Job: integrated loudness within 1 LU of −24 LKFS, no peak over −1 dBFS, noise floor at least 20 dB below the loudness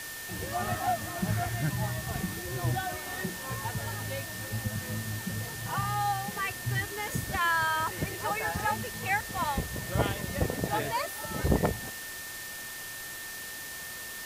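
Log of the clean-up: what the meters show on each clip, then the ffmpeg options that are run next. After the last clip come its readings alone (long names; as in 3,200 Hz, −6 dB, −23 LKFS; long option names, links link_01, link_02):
interfering tone 1,800 Hz; level of the tone −42 dBFS; background noise floor −41 dBFS; target noise floor −52 dBFS; integrated loudness −32.0 LKFS; sample peak −10.0 dBFS; target loudness −24.0 LKFS
→ -af "bandreject=frequency=1800:width=30"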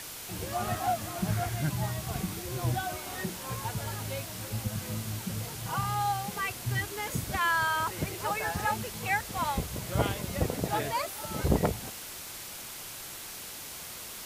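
interfering tone none found; background noise floor −42 dBFS; target noise floor −53 dBFS
→ -af "afftdn=noise_reduction=11:noise_floor=-42"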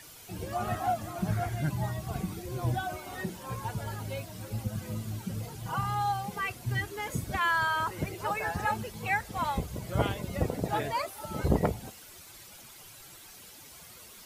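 background noise floor −50 dBFS; target noise floor −53 dBFS
→ -af "afftdn=noise_reduction=6:noise_floor=-50"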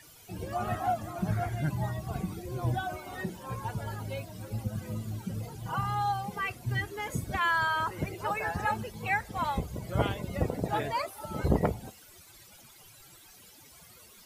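background noise floor −55 dBFS; integrated loudness −32.5 LKFS; sample peak −10.5 dBFS; target loudness −24.0 LKFS
→ -af "volume=8.5dB"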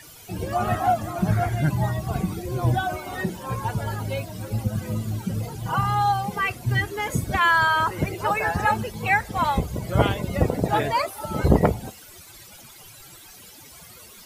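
integrated loudness −24.0 LKFS; sample peak −2.0 dBFS; background noise floor −46 dBFS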